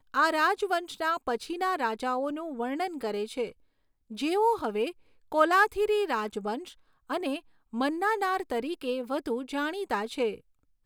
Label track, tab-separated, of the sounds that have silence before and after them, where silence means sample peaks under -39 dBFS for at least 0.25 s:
4.110000	4.910000	sound
5.320000	6.700000	sound
7.100000	7.390000	sound
7.730000	10.350000	sound